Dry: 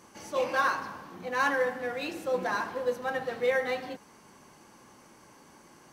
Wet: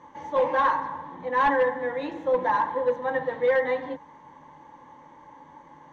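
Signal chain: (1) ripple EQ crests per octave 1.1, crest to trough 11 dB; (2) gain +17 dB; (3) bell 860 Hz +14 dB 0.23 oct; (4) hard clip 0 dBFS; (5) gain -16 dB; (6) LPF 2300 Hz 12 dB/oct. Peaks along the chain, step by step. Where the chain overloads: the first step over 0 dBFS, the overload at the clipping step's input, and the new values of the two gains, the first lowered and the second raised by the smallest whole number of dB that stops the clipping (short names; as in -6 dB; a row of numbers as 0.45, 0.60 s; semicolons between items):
-12.0, +5.0, +8.5, 0.0, -16.0, -15.5 dBFS; step 2, 8.5 dB; step 2 +8 dB, step 5 -7 dB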